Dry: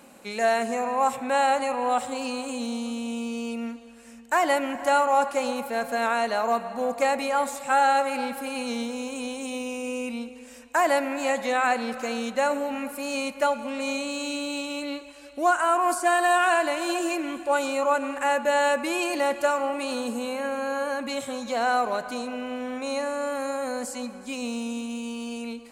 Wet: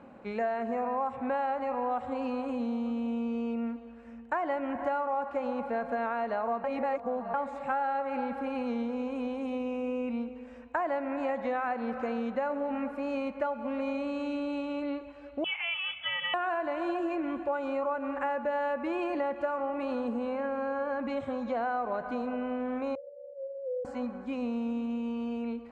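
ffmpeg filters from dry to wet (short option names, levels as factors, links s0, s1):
-filter_complex "[0:a]asettb=1/sr,asplit=3[s0][s1][s2];[s0]atrim=end=15.444[s3];[s1]atrim=start=15.44:end=16.34,asetpts=PTS-STARTPTS,afade=t=in:d=0.004:c=qsin,afade=t=out:st=0.896:d=0.004:c=qsin,lowpass=f=3100:t=q:w=0.5098,lowpass=f=3100:t=q:w=0.6013,lowpass=f=3100:t=q:w=0.9,lowpass=f=3100:t=q:w=2.563,afreqshift=-3700[s4];[s2]atrim=start=16.336[s5];[s3][s4]acrossfade=d=0.004:c1=hsin:c2=qsin[s6];[s6][s5]acrossfade=d=0.004:c1=qsin:c2=hsin,asettb=1/sr,asplit=3[s7][s8][s9];[s7]atrim=end=22.954[s10];[s8]atrim=start=22.95:end=23.85,asetpts=PTS-STARTPTS,afade=t=in:d=0.004:c=qsin,afade=t=out:st=0.896:d=0.004:c=qsin,asuperpass=centerf=480:order=8:qfactor=4.7[s11];[s9]atrim=start=23.846[s12];[s10][s11]acrossfade=d=0.004:c1=hsin:c2=qsin[s13];[s13][s12]acrossfade=d=0.004:c1=qsin:c2=hsin,asplit=3[s14][s15][s16];[s14]atrim=end=6.642[s17];[s15]atrim=start=6.638:end=7.342,asetpts=PTS-STARTPTS,areverse[s18];[s16]atrim=start=7.338[s19];[s17][s18]acrossfade=d=0.004:c1=hsin:c2=hsin[s20];[s20][s19]acrossfade=d=0.004:c1=hsin:c2=hsin,lowpass=1500,equalizer=f=79:t=o:w=0.9:g=12.5,acompressor=threshold=0.0398:ratio=6"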